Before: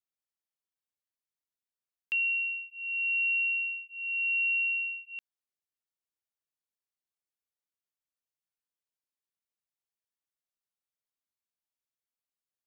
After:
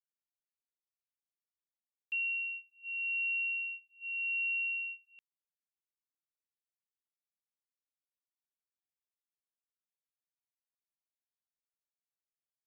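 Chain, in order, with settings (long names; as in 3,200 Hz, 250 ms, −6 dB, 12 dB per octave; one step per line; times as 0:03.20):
noise gate −37 dBFS, range −14 dB
level −5.5 dB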